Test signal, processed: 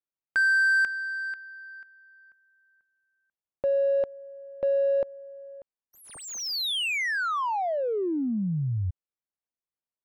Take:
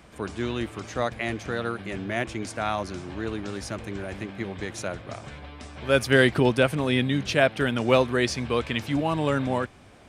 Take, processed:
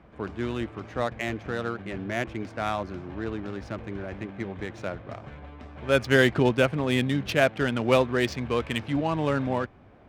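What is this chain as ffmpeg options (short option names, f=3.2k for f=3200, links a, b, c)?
-af "adynamicsmooth=sensitivity=3.5:basefreq=1.8k,volume=-1dB"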